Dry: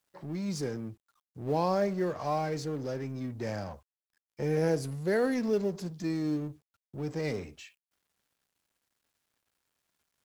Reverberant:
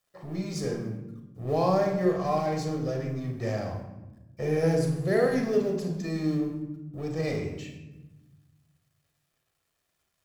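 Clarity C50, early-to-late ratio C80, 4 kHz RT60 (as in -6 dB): 5.5 dB, 8.0 dB, 0.65 s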